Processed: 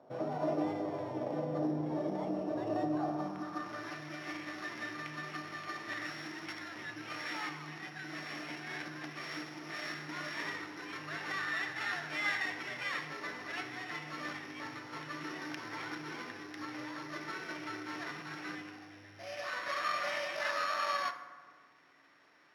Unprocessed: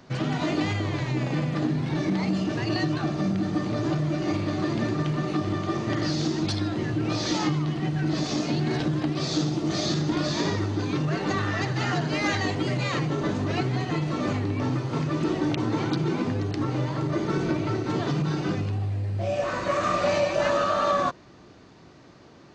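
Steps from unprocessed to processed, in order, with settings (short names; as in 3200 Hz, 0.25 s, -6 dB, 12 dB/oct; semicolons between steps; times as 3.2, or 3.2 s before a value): sample sorter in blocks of 8 samples; FDN reverb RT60 1.6 s, low-frequency decay 1.45×, high-frequency decay 0.5×, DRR 8 dB; band-pass sweep 620 Hz -> 1900 Hz, 2.9–3.94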